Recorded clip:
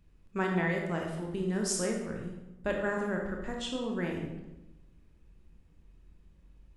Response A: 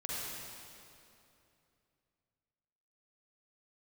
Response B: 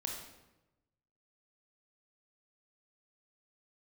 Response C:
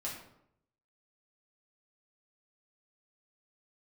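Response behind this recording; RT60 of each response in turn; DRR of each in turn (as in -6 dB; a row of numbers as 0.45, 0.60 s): B; 2.8, 1.0, 0.75 s; -7.0, 0.5, -5.5 dB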